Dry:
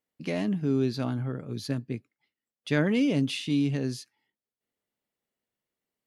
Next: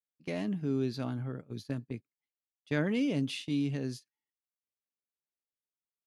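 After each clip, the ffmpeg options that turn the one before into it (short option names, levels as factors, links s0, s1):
-af "agate=range=0.178:threshold=0.0178:ratio=16:detection=peak,volume=0.531"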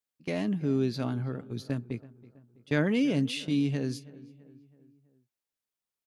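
-filter_complex "[0:a]asplit=2[s0][s1];[s1]adelay=327,lowpass=f=2100:p=1,volume=0.106,asplit=2[s2][s3];[s3]adelay=327,lowpass=f=2100:p=1,volume=0.54,asplit=2[s4][s5];[s5]adelay=327,lowpass=f=2100:p=1,volume=0.54,asplit=2[s6][s7];[s7]adelay=327,lowpass=f=2100:p=1,volume=0.54[s8];[s0][s2][s4][s6][s8]amix=inputs=5:normalize=0,volume=1.58"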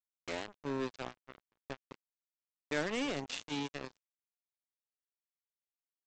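-af "highpass=390,aresample=16000,acrusher=bits=4:mix=0:aa=0.5,aresample=44100,volume=0.596"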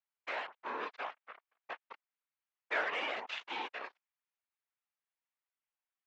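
-af "afftfilt=real='hypot(re,im)*cos(2*PI*random(0))':imag='hypot(re,im)*sin(2*PI*random(1))':win_size=512:overlap=0.75,asuperpass=centerf=1400:order=4:qfactor=0.71,volume=3.76"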